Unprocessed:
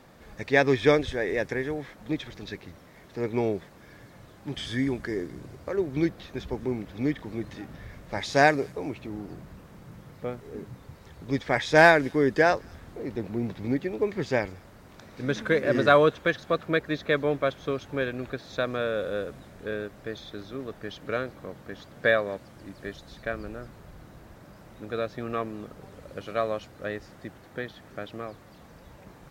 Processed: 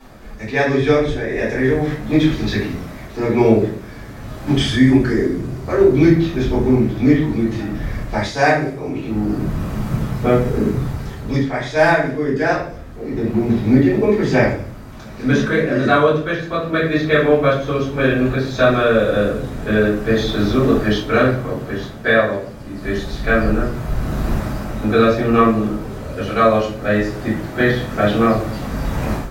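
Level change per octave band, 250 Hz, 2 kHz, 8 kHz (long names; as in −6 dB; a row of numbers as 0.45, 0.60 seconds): +14.5 dB, +7.5 dB, can't be measured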